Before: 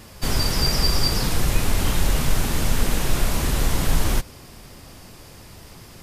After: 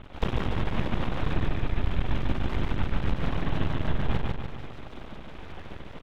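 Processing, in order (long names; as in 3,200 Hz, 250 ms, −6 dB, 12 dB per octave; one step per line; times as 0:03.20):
high-shelf EQ 2,100 Hz −7 dB
downward compressor 3 to 1, threshold −33 dBFS, peak gain reduction 15.5 dB
dead-zone distortion −44.5 dBFS
linear-prediction vocoder at 8 kHz whisper
half-wave rectification
repeating echo 146 ms, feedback 49%, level −3 dB
speech leveller 0.5 s
level +8 dB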